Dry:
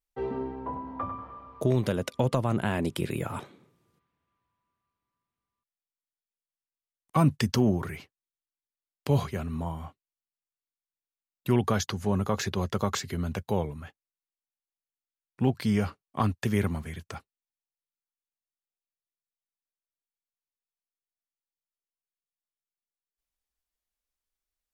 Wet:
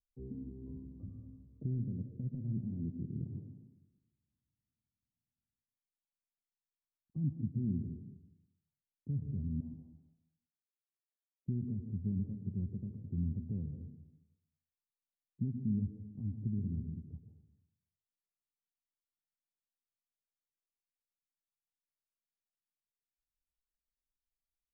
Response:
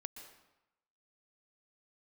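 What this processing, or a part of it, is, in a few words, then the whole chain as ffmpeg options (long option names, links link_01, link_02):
club heard from the street: -filter_complex "[0:a]asettb=1/sr,asplit=3[link_01][link_02][link_03];[link_01]atrim=end=9.604[link_04];[link_02]atrim=start=9.6:end=11.48,asetpts=PTS-STARTPTS,afade=type=in:duration=0.004:curve=qsin,afade=type=out:start_time=1.876:duration=0.004:curve=qsin,highpass=550[link_05];[link_03]atrim=start=11.476[link_06];[link_04][link_05]acrossfade=duration=0.004:curve1=hsin:curve2=qsin[link_07];[link_07][link_06]acrossfade=duration=0.004:curve1=qsin:curve2=hsin,alimiter=limit=-20.5dB:level=0:latency=1:release=286,lowpass=frequency=240:width=0.5412,lowpass=frequency=240:width=1.3066[link_08];[1:a]atrim=start_sample=2205[link_09];[link_08][link_09]afir=irnorm=-1:irlink=0,volume=1.5dB"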